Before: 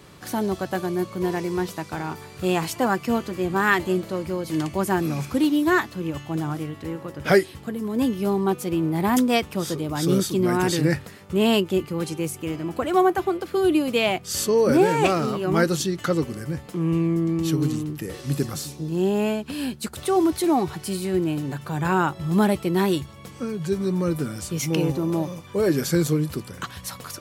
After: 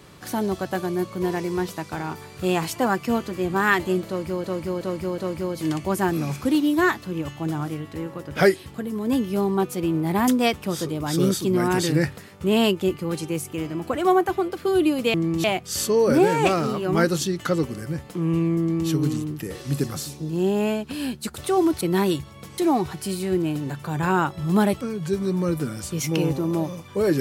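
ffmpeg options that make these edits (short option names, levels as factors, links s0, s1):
-filter_complex "[0:a]asplit=9[s0][s1][s2][s3][s4][s5][s6][s7][s8];[s0]atrim=end=4.442[s9];[s1]atrim=start=4.068:end=4.442[s10];[s2]atrim=start=4.068:end=4.442[s11];[s3]atrim=start=4.068:end=14.032[s12];[s4]atrim=start=17.188:end=17.492[s13];[s5]atrim=start=14.028:end=20.402[s14];[s6]atrim=start=22.628:end=23.402[s15];[s7]atrim=start=20.398:end=22.632[s16];[s8]atrim=start=23.398[s17];[s9][s10]acrossfade=d=0.004:c1=hsin:c2=hsin[s18];[s18][s11]acrossfade=d=0.004:c1=hsin:c2=hsin[s19];[s19][s12]acrossfade=d=0.004:c1=hsin:c2=hsin[s20];[s20][s13]acrossfade=d=0.004:c1=hsin:c2=hsin[s21];[s21][s14]acrossfade=d=0.004:c1=hsin:c2=hsin[s22];[s22][s15]acrossfade=d=0.004:c1=hsin:c2=hsin[s23];[s23][s16]acrossfade=d=0.004:c1=hsin:c2=hsin[s24];[s24][s17]acrossfade=d=0.004:c1=hsin:c2=hsin"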